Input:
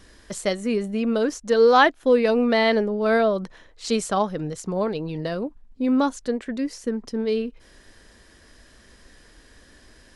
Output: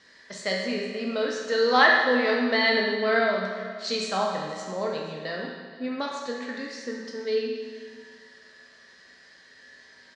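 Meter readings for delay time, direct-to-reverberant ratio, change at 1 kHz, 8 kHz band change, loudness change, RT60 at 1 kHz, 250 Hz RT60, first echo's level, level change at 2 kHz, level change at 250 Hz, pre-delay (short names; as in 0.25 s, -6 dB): 0.479 s, -2.5 dB, -3.0 dB, -6.0 dB, -3.0 dB, 1.7 s, 1.7 s, -19.0 dB, +4.0 dB, -7.5 dB, 5 ms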